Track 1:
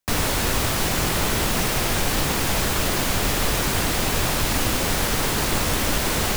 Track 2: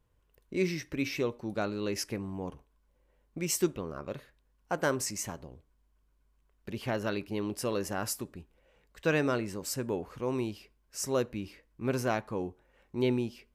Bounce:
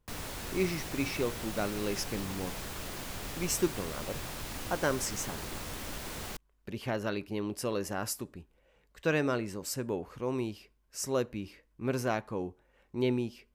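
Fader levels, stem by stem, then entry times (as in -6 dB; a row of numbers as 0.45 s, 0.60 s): -18.0 dB, -1.0 dB; 0.00 s, 0.00 s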